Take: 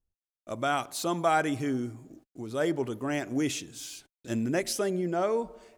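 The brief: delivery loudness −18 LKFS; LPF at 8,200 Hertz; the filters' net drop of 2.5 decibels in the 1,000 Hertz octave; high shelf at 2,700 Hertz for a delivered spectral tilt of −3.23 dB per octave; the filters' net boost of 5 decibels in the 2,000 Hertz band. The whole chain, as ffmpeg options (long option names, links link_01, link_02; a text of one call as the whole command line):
ffmpeg -i in.wav -af "lowpass=8200,equalizer=frequency=1000:width_type=o:gain=-7,equalizer=frequency=2000:width_type=o:gain=5.5,highshelf=frequency=2700:gain=9,volume=11dB" out.wav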